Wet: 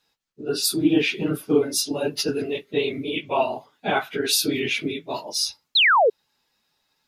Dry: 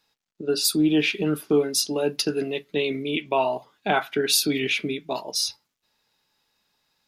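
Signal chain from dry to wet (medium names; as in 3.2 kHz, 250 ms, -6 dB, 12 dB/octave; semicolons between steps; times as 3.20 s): phase randomisation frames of 50 ms; painted sound fall, 5.75–6.10 s, 400–4400 Hz -16 dBFS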